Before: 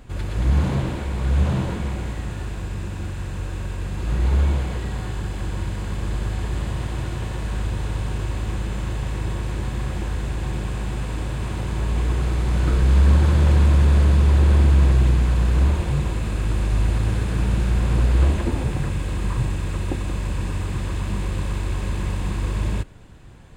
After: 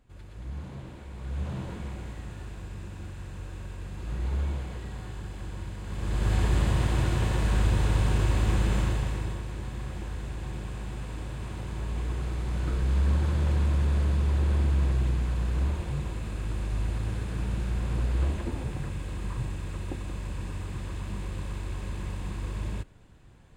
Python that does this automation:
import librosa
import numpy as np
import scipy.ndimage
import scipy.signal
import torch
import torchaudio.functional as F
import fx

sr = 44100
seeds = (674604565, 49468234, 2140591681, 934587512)

y = fx.gain(x, sr, db=fx.line((0.69, -19.0), (1.8, -10.5), (5.82, -10.5), (6.34, 1.5), (8.78, 1.5), (9.46, -9.5)))